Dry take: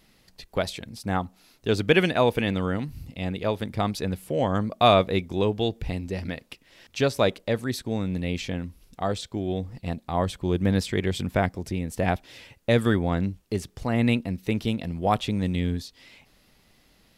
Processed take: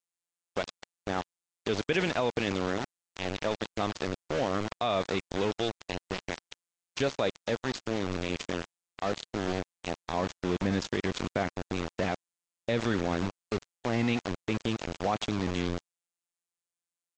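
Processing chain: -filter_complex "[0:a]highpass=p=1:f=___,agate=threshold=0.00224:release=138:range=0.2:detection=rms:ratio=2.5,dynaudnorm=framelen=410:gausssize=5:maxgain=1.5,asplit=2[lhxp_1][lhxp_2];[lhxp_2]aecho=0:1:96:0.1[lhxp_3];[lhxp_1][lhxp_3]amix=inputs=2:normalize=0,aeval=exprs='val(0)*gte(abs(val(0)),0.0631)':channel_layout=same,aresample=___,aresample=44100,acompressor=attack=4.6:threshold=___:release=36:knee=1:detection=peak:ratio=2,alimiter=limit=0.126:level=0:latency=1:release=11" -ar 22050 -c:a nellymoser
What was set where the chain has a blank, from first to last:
160, 16000, 0.0282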